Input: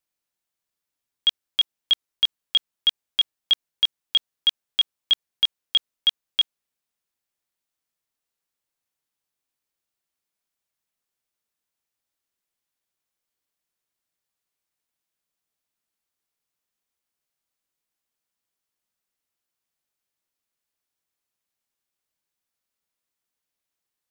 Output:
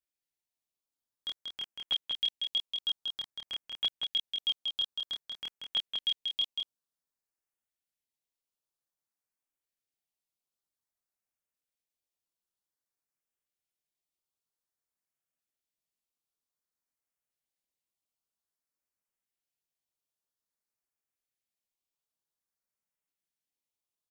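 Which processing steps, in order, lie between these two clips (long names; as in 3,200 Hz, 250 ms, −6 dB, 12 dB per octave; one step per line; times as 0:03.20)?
multi-voice chorus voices 2, 0.71 Hz, delay 27 ms, depth 4.2 ms
auto-filter notch saw up 0.52 Hz 940–4,800 Hz
on a send: single-tap delay 186 ms −4.5 dB
on the sum: level −6 dB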